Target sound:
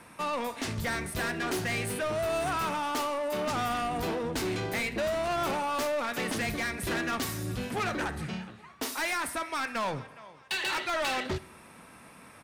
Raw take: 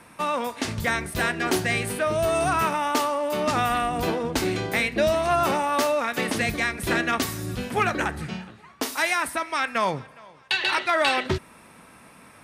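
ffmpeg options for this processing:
-af "asoftclip=type=tanh:threshold=0.0562,aecho=1:1:64|128|192|256:0.0944|0.0519|0.0286|0.0157,volume=0.794"

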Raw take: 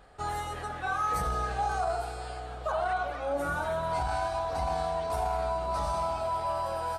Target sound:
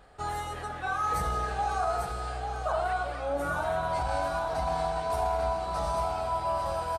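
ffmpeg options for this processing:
-af "aecho=1:1:844:0.473"

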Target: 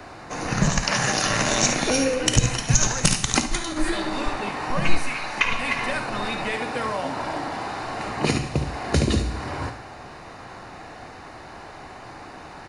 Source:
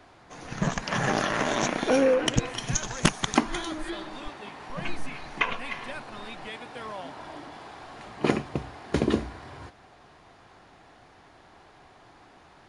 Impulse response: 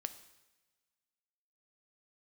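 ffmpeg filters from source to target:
-filter_complex "[0:a]bandreject=f=3300:w=5.9,aecho=1:1:55|71:0.251|0.299,acrossover=split=130|3000[s0][s1][s2];[s1]acompressor=threshold=0.0158:ratio=6[s3];[s0][s3][s2]amix=inputs=3:normalize=0,asettb=1/sr,asplit=3[s4][s5][s6];[s4]atrim=end=0.824[s7];[s5]atrim=start=0.82:end=1.25,asetpts=PTS-STARTPTS,afade=t=in:d=0.004:c=qsin,afade=t=out:st=0.426:d=0.004:c=qsin,lowshelf=f=180:g=-11[s8];[s6]atrim=start=1.246[s9];[s7][s8]acrossfade=d=0.004:c1=hsin:c2=qsin[s10];[s10][s9]acrossfade=d=0.004:c1=qsin:c2=hsin,asplit=3[s11][s12][s13];[s11]afade=t=out:st=2.56:d=0.02[s14];[s12]agate=range=0.0224:threshold=0.0282:ratio=3:detection=peak,afade=t=in:st=2.56:d=0.02,afade=t=out:st=3.75:d=0.02[s15];[s13]afade=t=in:st=3.75:d=0.02[s16];[s14][s15][s16]amix=inputs=3:normalize=0,asettb=1/sr,asplit=3[s17][s18][s19];[s17]atrim=end=4.984[s20];[s18]atrim=start=4.98:end=5.44,asetpts=PTS-STARTPTS,afade=t=in:d=0.004:c=qsin,afade=t=out:st=0.456:d=0.004:c=qsin,lowshelf=f=460:g=-11[s21];[s19]atrim=start=5.436[s22];[s20][s21]acrossfade=d=0.004:c1=hsin:c2=qsin[s23];[s23][s22]acrossfade=d=0.004:c1=qsin:c2=hsin[s24];[1:a]atrim=start_sample=2205[s25];[s24][s25]afir=irnorm=-1:irlink=0,alimiter=level_in=6.31:limit=0.891:release=50:level=0:latency=1,volume=0.891"

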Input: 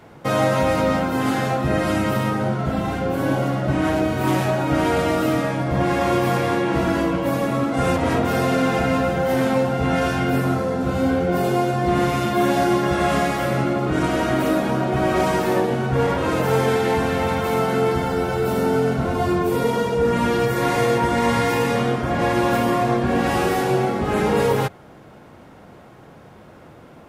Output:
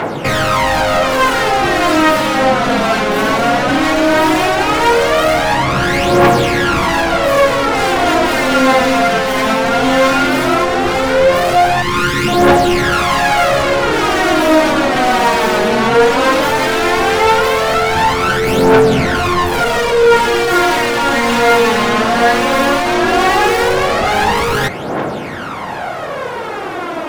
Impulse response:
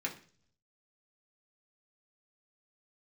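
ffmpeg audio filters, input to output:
-filter_complex "[0:a]asplit=2[s0][s1];[s1]highpass=f=720:p=1,volume=56.2,asoftclip=type=tanh:threshold=0.473[s2];[s0][s2]amix=inputs=2:normalize=0,lowpass=f=3400:p=1,volume=0.501,asettb=1/sr,asplit=3[s3][s4][s5];[s3]atrim=end=11.824[s6];[s4]atrim=start=11.82:end=12.28,asetpts=PTS-STARTPTS,afade=t=in:d=0.004:c=qsin,afade=t=out:st=0.456:d=0.004:c=qsin,asuperstop=centerf=670:order=8:qfactor=2.1[s7];[s5]atrim=start=12.276[s8];[s6][s7]acrossfade=d=0.004:c1=hsin:c2=qsin[s9];[s9][s8]acrossfade=d=0.004:c1=qsin:c2=hsin,aphaser=in_gain=1:out_gain=1:delay=4.8:decay=0.61:speed=0.16:type=triangular,volume=0.841"

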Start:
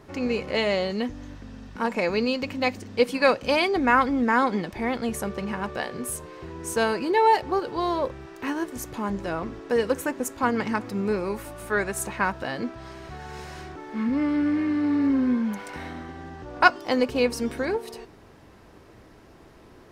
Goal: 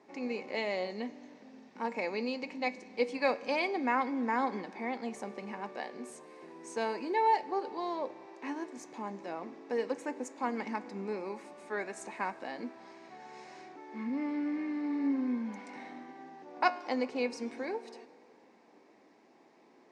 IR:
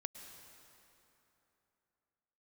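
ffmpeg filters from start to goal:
-filter_complex "[0:a]asplit=2[s0][s1];[1:a]atrim=start_sample=2205[s2];[s1][s2]afir=irnorm=-1:irlink=0,volume=0.376[s3];[s0][s3]amix=inputs=2:normalize=0,flanger=delay=9.6:depth=2.1:regen=88:speed=0.38:shape=triangular,highpass=f=220:w=0.5412,highpass=f=220:w=1.3066,equalizer=f=240:t=q:w=4:g=3,equalizer=f=820:t=q:w=4:g=6,equalizer=f=1400:t=q:w=4:g=-7,equalizer=f=2200:t=q:w=4:g=5,equalizer=f=3100:t=q:w=4:g=-5,lowpass=f=7500:w=0.5412,lowpass=f=7500:w=1.3066,volume=0.398"

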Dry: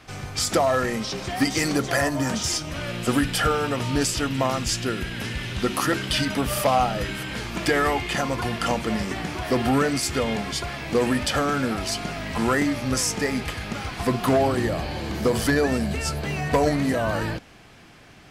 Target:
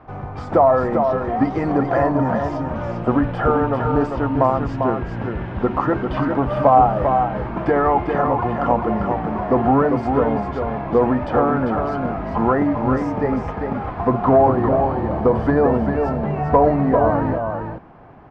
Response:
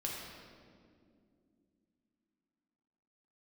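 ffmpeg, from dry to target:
-af "lowpass=f=930:t=q:w=1.9,aecho=1:1:397:0.531,volume=1.5"

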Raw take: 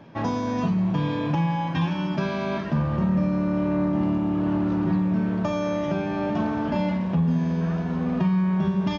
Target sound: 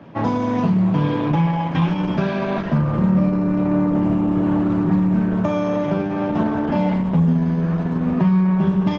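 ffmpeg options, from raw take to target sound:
-af "highpass=f=85:w=0.5412,highpass=f=85:w=1.3066,highshelf=f=4700:g=-10.5,volume=2" -ar 48000 -c:a libopus -b:a 12k

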